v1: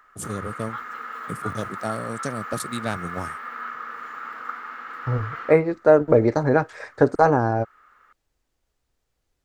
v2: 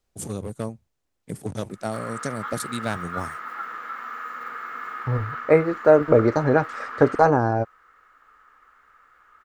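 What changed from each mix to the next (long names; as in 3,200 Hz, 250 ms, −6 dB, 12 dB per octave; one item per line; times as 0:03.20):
background: entry +1.70 s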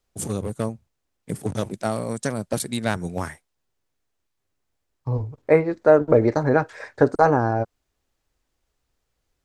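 first voice +4.0 dB
background: muted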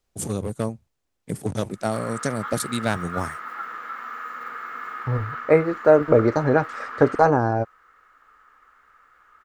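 background: unmuted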